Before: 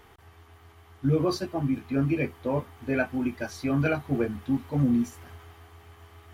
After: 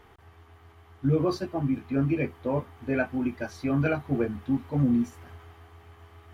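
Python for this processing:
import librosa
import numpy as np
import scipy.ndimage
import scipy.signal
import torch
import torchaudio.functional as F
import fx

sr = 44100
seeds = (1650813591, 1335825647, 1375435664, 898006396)

y = fx.high_shelf(x, sr, hz=3800.0, db=-8.0)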